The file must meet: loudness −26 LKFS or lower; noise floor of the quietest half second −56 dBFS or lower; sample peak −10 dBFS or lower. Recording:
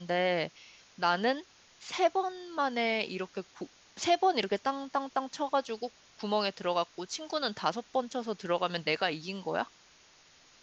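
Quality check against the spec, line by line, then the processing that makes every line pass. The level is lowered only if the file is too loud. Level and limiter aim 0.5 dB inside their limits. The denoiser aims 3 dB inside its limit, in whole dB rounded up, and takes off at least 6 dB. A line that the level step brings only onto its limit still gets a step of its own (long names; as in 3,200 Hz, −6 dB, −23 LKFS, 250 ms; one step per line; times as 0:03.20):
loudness −32.0 LKFS: in spec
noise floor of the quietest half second −60 dBFS: in spec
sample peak −13.5 dBFS: in spec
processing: no processing needed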